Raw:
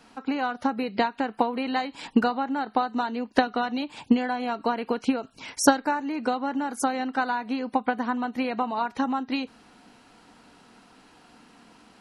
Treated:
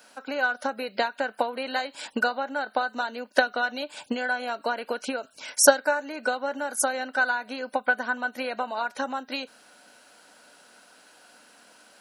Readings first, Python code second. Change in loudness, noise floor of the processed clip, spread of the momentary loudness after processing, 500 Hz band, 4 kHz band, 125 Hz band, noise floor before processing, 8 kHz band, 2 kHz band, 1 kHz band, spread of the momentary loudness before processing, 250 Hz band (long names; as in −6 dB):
0.0 dB, −57 dBFS, 8 LU, +2.5 dB, +2.5 dB, can't be measured, −56 dBFS, +7.5 dB, +6.5 dB, −2.5 dB, 5 LU, −10.0 dB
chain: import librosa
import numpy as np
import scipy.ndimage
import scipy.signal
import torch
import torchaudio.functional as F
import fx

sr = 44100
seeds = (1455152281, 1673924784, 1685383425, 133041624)

y = fx.riaa(x, sr, side='recording')
y = fx.small_body(y, sr, hz=(580.0, 1500.0), ring_ms=35, db=14)
y = y * 10.0 ** (-4.0 / 20.0)